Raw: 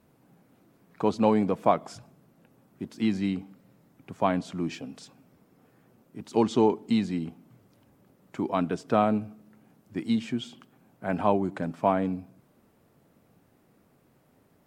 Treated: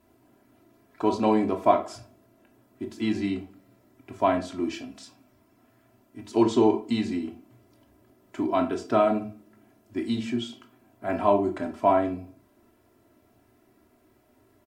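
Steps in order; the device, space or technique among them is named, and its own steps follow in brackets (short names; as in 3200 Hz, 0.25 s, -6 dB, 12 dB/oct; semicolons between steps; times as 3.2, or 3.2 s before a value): microphone above a desk (comb 3 ms, depth 86%; reverb RT60 0.35 s, pre-delay 16 ms, DRR 5 dB); 4.81–6.29 bell 410 Hz -6 dB 0.87 oct; gain -1.5 dB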